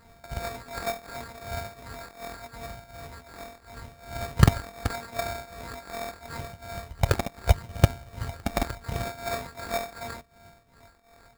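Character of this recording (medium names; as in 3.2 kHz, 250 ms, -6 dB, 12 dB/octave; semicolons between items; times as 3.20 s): a buzz of ramps at a fixed pitch in blocks of 64 samples; tremolo triangle 2.7 Hz, depth 85%; phasing stages 6, 0.79 Hz, lowest notch 110–4700 Hz; aliases and images of a low sample rate 3 kHz, jitter 0%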